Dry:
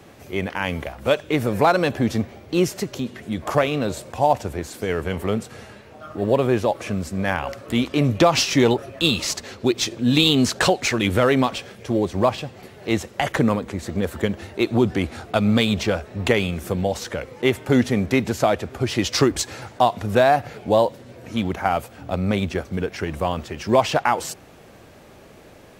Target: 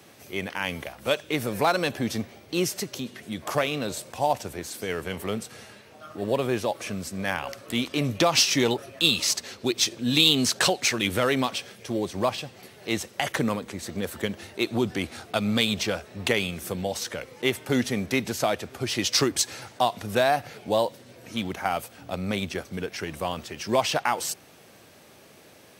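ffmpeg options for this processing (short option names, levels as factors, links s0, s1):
-af "highpass=100,highshelf=f=2500:g=10.5,bandreject=f=7100:w=15,volume=0.447"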